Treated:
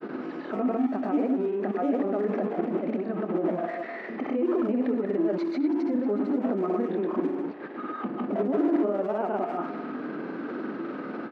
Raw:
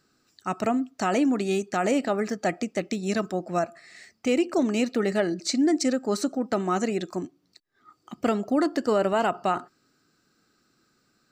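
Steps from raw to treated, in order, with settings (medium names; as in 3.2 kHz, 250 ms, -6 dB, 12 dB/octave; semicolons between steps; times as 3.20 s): jump at every zero crossing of -27.5 dBFS; tilt shelf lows +4 dB, about 920 Hz; level held to a coarse grid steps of 10 dB; Bessel low-pass 1.6 kHz, order 4; peak limiter -29 dBFS, peak gain reduction 16 dB; bass shelf 440 Hz +8 dB; doubling 24 ms -10.5 dB; speakerphone echo 150 ms, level -6 dB; granulator, pitch spread up and down by 0 st; high-pass 250 Hz 24 dB/octave; trim +5.5 dB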